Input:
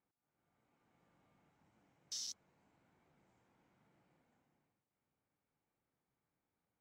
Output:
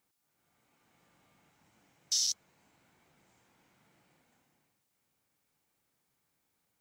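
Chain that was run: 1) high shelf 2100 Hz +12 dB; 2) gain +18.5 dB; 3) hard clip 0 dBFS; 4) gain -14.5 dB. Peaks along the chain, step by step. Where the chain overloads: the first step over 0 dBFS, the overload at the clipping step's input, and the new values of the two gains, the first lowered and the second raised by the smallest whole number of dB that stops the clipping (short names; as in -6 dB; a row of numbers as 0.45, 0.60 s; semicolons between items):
-24.0, -5.5, -5.5, -20.0 dBFS; no overload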